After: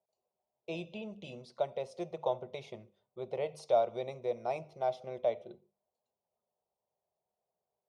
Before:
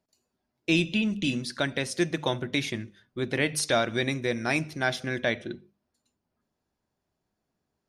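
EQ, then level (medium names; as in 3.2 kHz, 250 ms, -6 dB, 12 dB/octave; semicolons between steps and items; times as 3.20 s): band-pass filter 580 Hz, Q 1.2; static phaser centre 690 Hz, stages 4; 0.0 dB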